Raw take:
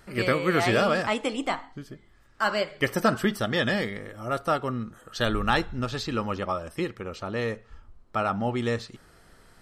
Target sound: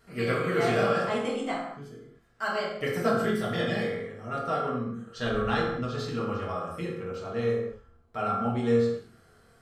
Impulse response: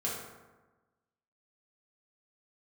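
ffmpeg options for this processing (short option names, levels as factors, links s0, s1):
-filter_complex "[0:a]asettb=1/sr,asplit=3[s0][s1][s2];[s0]atrim=end=3.934[s3];[s1]atrim=start=3.93:end=5.98,asetpts=PTS-STARTPTS,afade=t=in:d=0.004:c=qsin,afade=t=out:st=2.046:d=0.004:c=qsin,lowpass=7700[s4];[s2]atrim=start=5.976[s5];[s3][s4]acrossfade=d=0.004:c1=hsin:c2=qsin[s6];[s6][s5]acrossfade=d=0.004:c1=qsin:c2=hsin[s7];[1:a]atrim=start_sample=2205,afade=t=out:st=0.3:d=0.01,atrim=end_sample=13671[s8];[s7][s8]afir=irnorm=-1:irlink=0,volume=0.376"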